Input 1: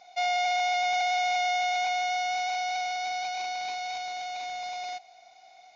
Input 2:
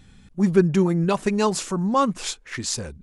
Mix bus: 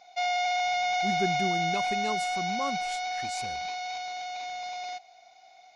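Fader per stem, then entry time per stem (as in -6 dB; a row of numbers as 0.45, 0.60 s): -1.0, -14.0 dB; 0.00, 0.65 s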